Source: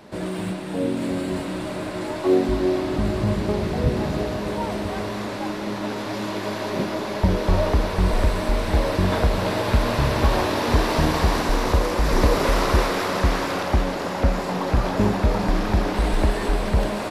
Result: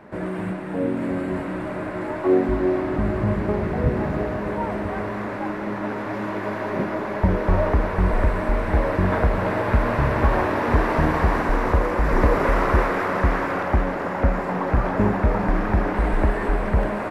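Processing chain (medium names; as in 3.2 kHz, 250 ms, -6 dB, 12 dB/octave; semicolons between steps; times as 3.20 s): resonant high shelf 2.7 kHz -12.5 dB, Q 1.5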